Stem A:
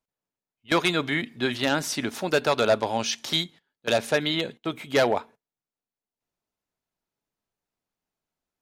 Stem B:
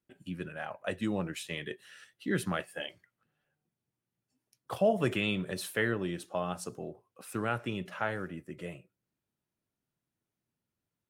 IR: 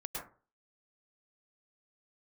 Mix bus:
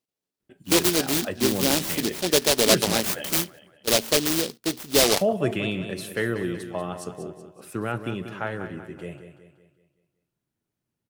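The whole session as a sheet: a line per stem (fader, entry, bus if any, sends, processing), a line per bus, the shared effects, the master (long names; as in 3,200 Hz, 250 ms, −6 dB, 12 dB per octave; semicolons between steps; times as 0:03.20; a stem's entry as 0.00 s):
+1.5 dB, 0.00 s, no send, no echo send, high-pass filter 140 Hz; short delay modulated by noise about 4,000 Hz, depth 0.26 ms
+1.5 dB, 0.40 s, no send, echo send −10 dB, low-shelf EQ 170 Hz +4.5 dB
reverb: not used
echo: repeating echo 188 ms, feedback 46%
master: parametric band 380 Hz +3.5 dB 0.82 octaves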